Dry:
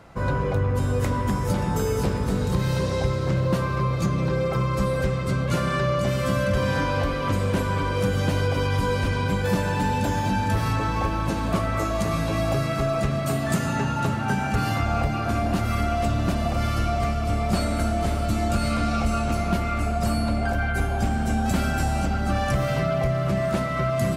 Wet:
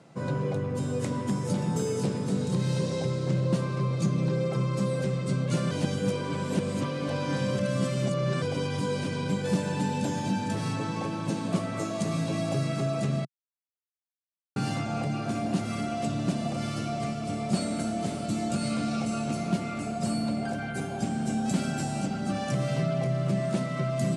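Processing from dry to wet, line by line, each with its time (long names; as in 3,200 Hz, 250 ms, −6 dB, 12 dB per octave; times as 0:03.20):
0:05.71–0:08.42: reverse
0:13.25–0:14.56: silence
whole clip: elliptic band-pass filter 140–9,200 Hz, stop band 40 dB; parametric band 1,300 Hz −10.5 dB 2.3 octaves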